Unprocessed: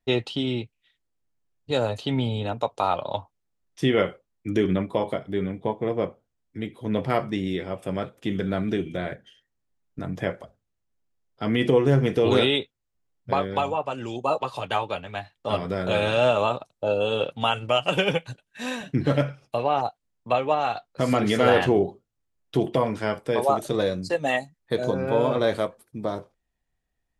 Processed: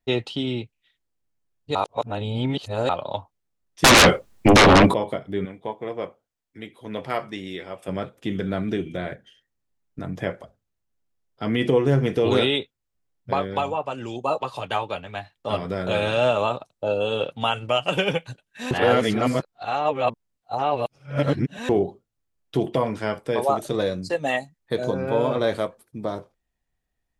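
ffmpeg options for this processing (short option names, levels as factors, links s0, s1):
-filter_complex "[0:a]asettb=1/sr,asplit=3[s0][s1][s2];[s0]atrim=end=3.844[s3];[s1]atrim=start=3.84:end=4.94,asetpts=PTS-STARTPTS,afade=t=in:d=0.004:c=qsin,afade=t=out:st=1.096:d=0.004:c=qsin,aeval=exprs='0.376*sin(PI/2*8.91*val(0)/0.376)':c=same[s4];[s2]atrim=start=4.936[s5];[s3][s4]acrossfade=d=0.004:c1=hsin:c2=qsin[s6];[s6][s5]acrossfade=d=0.004:c1=qsin:c2=hsin,asettb=1/sr,asplit=3[s7][s8][s9];[s7]atrim=end=5.454[s10];[s8]atrim=start=5.45:end=7.88,asetpts=PTS-STARTPTS,afade=t=in:d=0.004:c=qsin,afade=t=out:st=2.426:d=0.004:c=qsin,lowshelf=f=370:g=-11.5[s11];[s9]atrim=start=7.876[s12];[s10][s11]acrossfade=d=0.004:c1=hsin:c2=qsin[s13];[s13][s12]acrossfade=d=0.004:c1=qsin:c2=hsin,asplit=5[s14][s15][s16][s17][s18];[s14]atrim=end=1.752[s19];[s15]atrim=start=1.748:end=2.892,asetpts=PTS-STARTPTS,areverse[s20];[s16]atrim=start=2.888:end=18.712[s21];[s17]atrim=start=18.708:end=21.692,asetpts=PTS-STARTPTS,areverse[s22];[s18]atrim=start=21.688[s23];[s19][s20]acrossfade=d=0.004:c1=hsin:c2=hsin[s24];[s24][s21]acrossfade=d=0.004:c1=hsin:c2=hsin[s25];[s25][s22]acrossfade=d=0.004:c1=hsin:c2=hsin[s26];[s26][s23]acrossfade=d=0.004:c1=hsin:c2=hsin"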